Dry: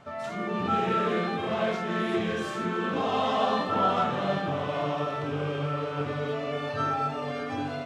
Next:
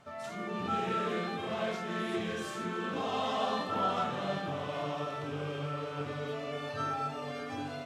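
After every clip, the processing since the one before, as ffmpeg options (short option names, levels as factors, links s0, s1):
-af "aemphasis=mode=production:type=cd,volume=0.473"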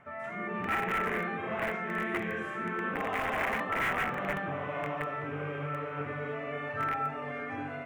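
-af "aeval=exprs='(mod(18.8*val(0)+1,2)-1)/18.8':c=same,highshelf=f=3000:t=q:w=3:g=-13.5"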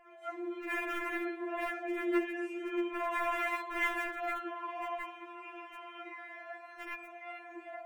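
-af "afftfilt=real='re*4*eq(mod(b,16),0)':imag='im*4*eq(mod(b,16),0)':win_size=2048:overlap=0.75"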